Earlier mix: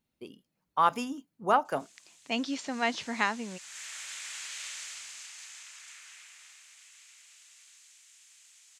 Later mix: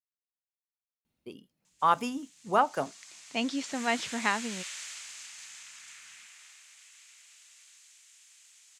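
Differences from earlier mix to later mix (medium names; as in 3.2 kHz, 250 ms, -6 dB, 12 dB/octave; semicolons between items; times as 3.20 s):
speech: entry +1.05 s; master: add peaking EQ 78 Hz +2.5 dB 2.8 oct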